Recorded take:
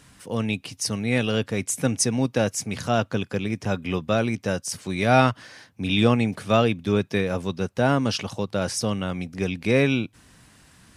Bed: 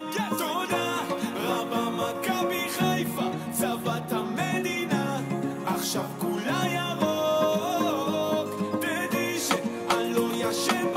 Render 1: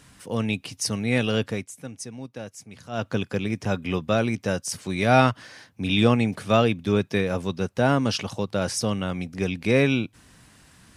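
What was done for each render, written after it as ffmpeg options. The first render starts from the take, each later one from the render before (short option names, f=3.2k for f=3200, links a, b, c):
-filter_complex "[0:a]asplit=3[a][b][c];[a]atrim=end=1.68,asetpts=PTS-STARTPTS,afade=t=out:st=1.5:d=0.18:silence=0.188365[d];[b]atrim=start=1.68:end=2.91,asetpts=PTS-STARTPTS,volume=-14.5dB[e];[c]atrim=start=2.91,asetpts=PTS-STARTPTS,afade=t=in:d=0.18:silence=0.188365[f];[d][e][f]concat=n=3:v=0:a=1"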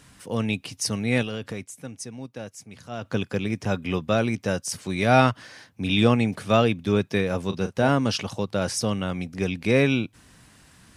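-filter_complex "[0:a]asettb=1/sr,asplit=3[a][b][c];[a]atrim=end=1.224[d];[b]atrim=start=1.22:end=3.14,asetpts=PTS-STARTPTS,afade=t=in:d=0.004:c=qsin,afade=t=out:st=1.916:d=0.004:c=qsin,acompressor=threshold=-27dB:ratio=6:attack=3.2:release=140:knee=1:detection=peak[e];[c]atrim=start=3.136[f];[d][e]acrossfade=d=0.004:c1=hsin:c2=qsin[g];[g][f]acrossfade=d=0.004:c1=qsin:c2=hsin,asettb=1/sr,asplit=3[h][i][j];[h]atrim=end=7.464[k];[i]atrim=start=7.46:end=7.89,asetpts=PTS-STARTPTS,afade=t=in:d=0.004:c=qsin,afade=t=out:st=0.426:d=0.004:c=qsin,asplit=2[l][m];[m]adelay=36,volume=-10dB[n];[l][n]amix=inputs=2:normalize=0,atrim=end_sample=18963[o];[j]atrim=start=7.886[p];[k][o]acrossfade=d=0.004:c1=hsin:c2=qsin[q];[q][p]acrossfade=d=0.004:c1=qsin:c2=hsin"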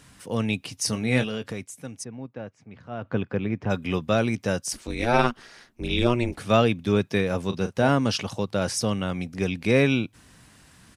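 -filter_complex "[0:a]asplit=3[a][b][c];[a]afade=t=out:st=0.79:d=0.02[d];[b]asplit=2[e][f];[f]adelay=23,volume=-9dB[g];[e][g]amix=inputs=2:normalize=0,afade=t=in:st=0.79:d=0.02,afade=t=out:st=1.42:d=0.02[h];[c]afade=t=in:st=1.42:d=0.02[i];[d][h][i]amix=inputs=3:normalize=0,asplit=3[j][k][l];[j]afade=t=out:st=2.03:d=0.02[m];[k]lowpass=2k,afade=t=in:st=2.03:d=0.02,afade=t=out:st=3.69:d=0.02[n];[l]afade=t=in:st=3.69:d=0.02[o];[m][n][o]amix=inputs=3:normalize=0,asettb=1/sr,asplit=3[p][q][r];[p]atrim=end=4.734[s];[q]atrim=start=4.73:end=6.39,asetpts=PTS-STARTPTS,afade=t=in:d=0.004:c=qsin,afade=t=out:st=1.656:d=0.004:c=qsin,aeval=exprs='val(0)*sin(2*PI*120*n/s)':c=same[t];[r]atrim=start=6.386[u];[s][t]acrossfade=d=0.004:c1=hsin:c2=qsin[v];[v][u]acrossfade=d=0.004:c1=qsin:c2=hsin"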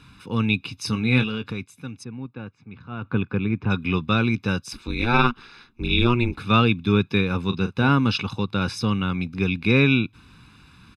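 -af "highshelf=f=5.2k:t=q:w=1.5:g=-11,aecho=1:1:0.8:0.8"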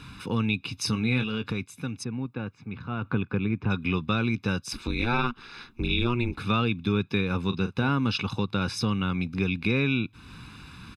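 -filter_complex "[0:a]asplit=2[a][b];[b]alimiter=limit=-10.5dB:level=0:latency=1,volume=-1.5dB[c];[a][c]amix=inputs=2:normalize=0,acompressor=threshold=-30dB:ratio=2"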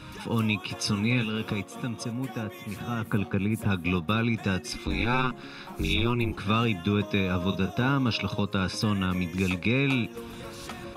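-filter_complex "[1:a]volume=-15dB[a];[0:a][a]amix=inputs=2:normalize=0"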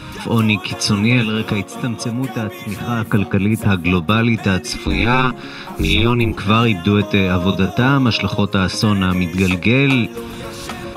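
-af "volume=11dB,alimiter=limit=-1dB:level=0:latency=1"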